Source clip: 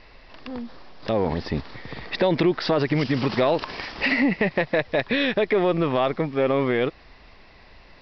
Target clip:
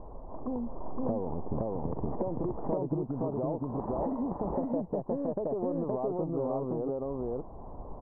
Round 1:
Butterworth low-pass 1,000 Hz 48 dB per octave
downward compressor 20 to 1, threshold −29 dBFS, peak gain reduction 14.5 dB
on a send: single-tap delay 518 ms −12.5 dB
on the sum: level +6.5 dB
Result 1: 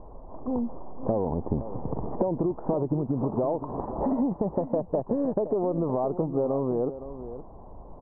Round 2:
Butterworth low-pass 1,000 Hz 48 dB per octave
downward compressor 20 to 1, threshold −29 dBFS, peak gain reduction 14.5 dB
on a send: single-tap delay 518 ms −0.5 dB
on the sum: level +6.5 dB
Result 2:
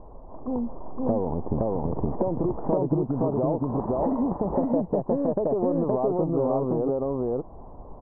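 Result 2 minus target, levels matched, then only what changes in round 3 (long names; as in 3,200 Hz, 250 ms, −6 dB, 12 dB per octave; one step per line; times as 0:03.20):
downward compressor: peak gain reduction −7.5 dB
change: downward compressor 20 to 1, threshold −37 dBFS, peak gain reduction 22 dB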